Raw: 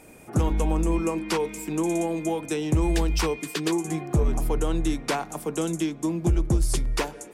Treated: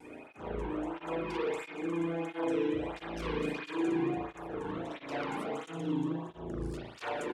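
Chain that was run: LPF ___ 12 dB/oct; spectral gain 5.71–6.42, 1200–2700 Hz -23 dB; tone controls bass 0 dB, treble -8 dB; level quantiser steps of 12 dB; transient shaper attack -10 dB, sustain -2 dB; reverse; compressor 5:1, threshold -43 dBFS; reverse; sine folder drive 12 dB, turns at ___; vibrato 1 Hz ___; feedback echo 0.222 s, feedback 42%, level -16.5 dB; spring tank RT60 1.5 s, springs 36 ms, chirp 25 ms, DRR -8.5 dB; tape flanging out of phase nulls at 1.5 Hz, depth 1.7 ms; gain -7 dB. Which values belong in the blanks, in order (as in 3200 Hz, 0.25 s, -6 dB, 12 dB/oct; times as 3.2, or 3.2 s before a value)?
8700 Hz, -28 dBFS, 36 cents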